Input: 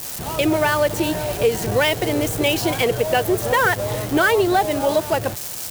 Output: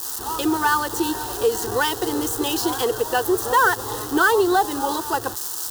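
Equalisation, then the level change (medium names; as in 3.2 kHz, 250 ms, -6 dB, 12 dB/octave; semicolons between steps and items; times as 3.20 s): bass shelf 360 Hz -10.5 dB; treble shelf 5.7 kHz -4 dB; static phaser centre 610 Hz, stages 6; +5.0 dB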